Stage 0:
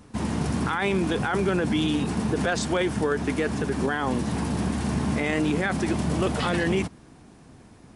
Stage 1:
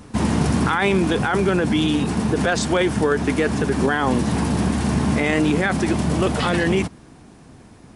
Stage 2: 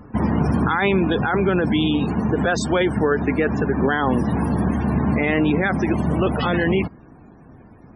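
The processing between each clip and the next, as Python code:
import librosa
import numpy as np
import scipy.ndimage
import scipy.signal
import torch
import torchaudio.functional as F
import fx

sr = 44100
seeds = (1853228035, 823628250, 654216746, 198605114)

y1 = fx.rider(x, sr, range_db=10, speed_s=2.0)
y1 = y1 * librosa.db_to_amplitude(5.5)
y2 = fx.spec_topn(y1, sr, count=64)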